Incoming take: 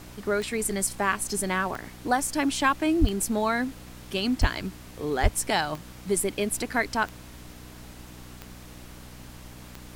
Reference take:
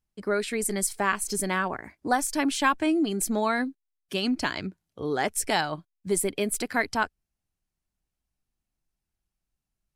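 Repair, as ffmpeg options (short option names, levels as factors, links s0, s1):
-filter_complex "[0:a]adeclick=t=4,bandreject=f=61.3:t=h:w=4,bandreject=f=122.6:t=h:w=4,bandreject=f=183.9:t=h:w=4,bandreject=f=245.2:t=h:w=4,bandreject=f=306.5:t=h:w=4,asplit=3[s0][s1][s2];[s0]afade=t=out:st=3:d=0.02[s3];[s1]highpass=f=140:w=0.5412,highpass=f=140:w=1.3066,afade=t=in:st=3:d=0.02,afade=t=out:st=3.12:d=0.02[s4];[s2]afade=t=in:st=3.12:d=0.02[s5];[s3][s4][s5]amix=inputs=3:normalize=0,asplit=3[s6][s7][s8];[s6]afade=t=out:st=4.4:d=0.02[s9];[s7]highpass=f=140:w=0.5412,highpass=f=140:w=1.3066,afade=t=in:st=4.4:d=0.02,afade=t=out:st=4.52:d=0.02[s10];[s8]afade=t=in:st=4.52:d=0.02[s11];[s9][s10][s11]amix=inputs=3:normalize=0,asplit=3[s12][s13][s14];[s12]afade=t=out:st=5.22:d=0.02[s15];[s13]highpass=f=140:w=0.5412,highpass=f=140:w=1.3066,afade=t=in:st=5.22:d=0.02,afade=t=out:st=5.34:d=0.02[s16];[s14]afade=t=in:st=5.34:d=0.02[s17];[s15][s16][s17]amix=inputs=3:normalize=0,afftdn=nr=30:nf=-45"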